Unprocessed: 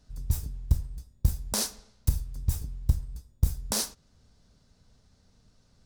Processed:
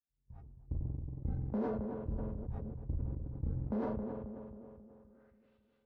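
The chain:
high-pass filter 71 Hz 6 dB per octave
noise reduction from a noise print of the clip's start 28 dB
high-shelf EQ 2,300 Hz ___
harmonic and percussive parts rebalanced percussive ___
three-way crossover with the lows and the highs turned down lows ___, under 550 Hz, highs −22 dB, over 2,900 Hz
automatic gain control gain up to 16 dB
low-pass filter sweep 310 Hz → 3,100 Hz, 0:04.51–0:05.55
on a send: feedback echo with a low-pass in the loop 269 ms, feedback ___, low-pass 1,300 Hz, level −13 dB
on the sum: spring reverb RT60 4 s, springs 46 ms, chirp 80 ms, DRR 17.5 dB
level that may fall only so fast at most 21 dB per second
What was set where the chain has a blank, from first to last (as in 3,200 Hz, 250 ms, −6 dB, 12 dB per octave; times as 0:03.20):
+2.5 dB, −14 dB, −17 dB, 59%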